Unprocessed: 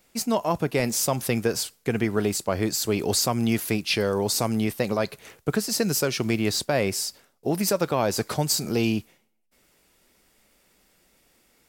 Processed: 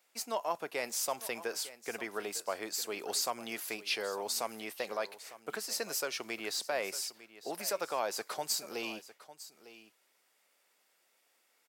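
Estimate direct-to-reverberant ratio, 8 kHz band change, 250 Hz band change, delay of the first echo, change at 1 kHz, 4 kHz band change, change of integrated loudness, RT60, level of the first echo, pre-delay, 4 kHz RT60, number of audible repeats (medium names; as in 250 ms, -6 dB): no reverb, -9.0 dB, -22.0 dB, 903 ms, -8.0 dB, -8.5 dB, -11.0 dB, no reverb, -16.0 dB, no reverb, no reverb, 1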